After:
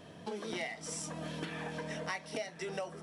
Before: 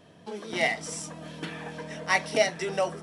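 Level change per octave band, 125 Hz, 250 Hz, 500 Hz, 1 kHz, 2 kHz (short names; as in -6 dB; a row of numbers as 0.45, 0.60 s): -4.0, -5.0, -11.0, -11.5, -12.5 dB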